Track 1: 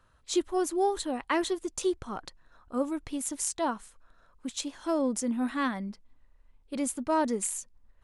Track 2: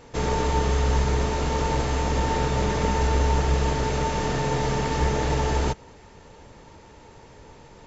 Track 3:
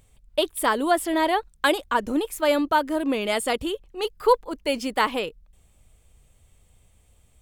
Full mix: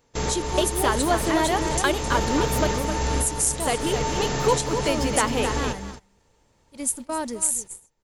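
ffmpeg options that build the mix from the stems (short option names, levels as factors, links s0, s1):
-filter_complex "[0:a]aemphasis=mode=production:type=75kf,volume=0.708,asplit=3[s0][s1][s2];[s1]volume=0.211[s3];[1:a]aemphasis=mode=production:type=50kf,volume=0.841,asplit=2[s4][s5];[s5]volume=0.224[s6];[2:a]acompressor=threshold=0.0562:ratio=2,adelay=200,volume=1.33,asplit=3[s7][s8][s9];[s7]atrim=end=2.67,asetpts=PTS-STARTPTS,afade=t=out:st=2.666:d=0.004:c=hsin[s10];[s8]atrim=start=2.67:end=3.6,asetpts=PTS-STARTPTS,volume=0[s11];[s9]atrim=start=3.6,asetpts=PTS-STARTPTS,afade=t=in:d=0.004:c=hsin[s12];[s10][s11][s12]concat=n=3:v=0:a=1,asplit=2[s13][s14];[s14]volume=0.398[s15];[s2]apad=whole_len=346795[s16];[s4][s16]sidechaincompress=threshold=0.0316:ratio=4:attack=21:release=574[s17];[s3][s6][s15]amix=inputs=3:normalize=0,aecho=0:1:263:1[s18];[s0][s17][s13][s18]amix=inputs=4:normalize=0,agate=range=0.158:threshold=0.02:ratio=16:detection=peak"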